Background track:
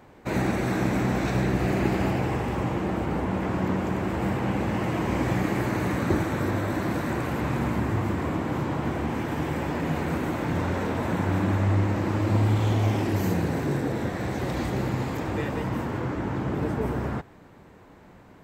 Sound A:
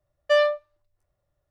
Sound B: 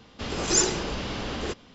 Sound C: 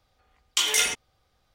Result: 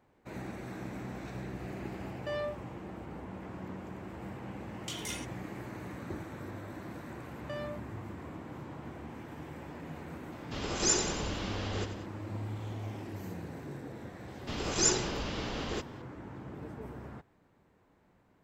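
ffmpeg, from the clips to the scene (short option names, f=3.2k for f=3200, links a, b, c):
-filter_complex "[1:a]asplit=2[a][b];[2:a]asplit=2[c][d];[0:a]volume=-16.5dB[e];[a]alimiter=limit=-22dB:level=0:latency=1:release=71[f];[b]acompressor=threshold=-33dB:ratio=6:attack=3.2:release=140:knee=1:detection=peak[g];[c]aecho=1:1:91|182|273|364|455|546:0.316|0.168|0.0888|0.0471|0.025|0.0132[h];[f]atrim=end=1.5,asetpts=PTS-STARTPTS,volume=-7.5dB,afade=t=in:d=0.004:c=hsin,afade=t=out:st=1.496:d=0.004:c=hsin,adelay=1970[i];[3:a]atrim=end=1.54,asetpts=PTS-STARTPTS,volume=-18dB,afade=t=in:d=0.004:c=hsin,afade=t=out:st=1.536:d=0.004:c=hsin,adelay=4310[j];[g]atrim=end=1.5,asetpts=PTS-STARTPTS,volume=-5.5dB,afade=t=in:d=0.004:c=hsin,afade=t=out:st=1.496:d=0.004:c=hsin,adelay=7200[k];[h]atrim=end=1.74,asetpts=PTS-STARTPTS,volume=-6dB,afade=t=in:d=0.004:c=hsin,afade=t=out:st=1.736:d=0.004:c=hsin,adelay=10320[l];[d]atrim=end=1.74,asetpts=PTS-STARTPTS,volume=-5dB,afade=t=in:d=0.004:c=hsin,afade=t=out:st=1.736:d=0.004:c=hsin,adelay=629748S[m];[e][i][j][k][l][m]amix=inputs=6:normalize=0"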